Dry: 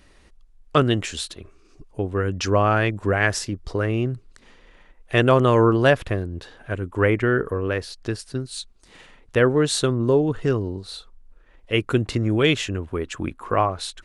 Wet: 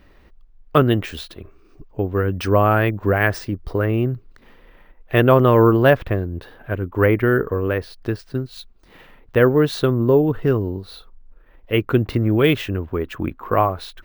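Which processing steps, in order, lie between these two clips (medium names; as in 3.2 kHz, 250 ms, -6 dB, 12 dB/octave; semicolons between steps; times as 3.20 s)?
careless resampling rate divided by 3×, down filtered, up hold; peaking EQ 9.5 kHz -14 dB 2.1 oct; trim +3.5 dB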